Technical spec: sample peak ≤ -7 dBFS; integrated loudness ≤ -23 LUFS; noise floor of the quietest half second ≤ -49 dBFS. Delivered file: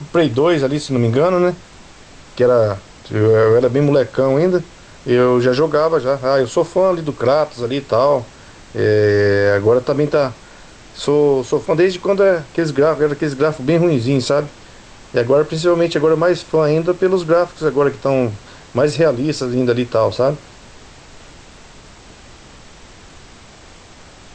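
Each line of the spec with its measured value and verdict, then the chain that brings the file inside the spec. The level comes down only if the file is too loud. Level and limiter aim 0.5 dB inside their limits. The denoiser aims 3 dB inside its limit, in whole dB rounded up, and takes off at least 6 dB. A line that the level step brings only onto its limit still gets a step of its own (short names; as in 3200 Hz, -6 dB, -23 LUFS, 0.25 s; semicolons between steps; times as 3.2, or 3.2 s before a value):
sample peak -4.5 dBFS: fail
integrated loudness -16.0 LUFS: fail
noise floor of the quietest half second -41 dBFS: fail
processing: denoiser 6 dB, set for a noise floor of -41 dBFS; gain -7.5 dB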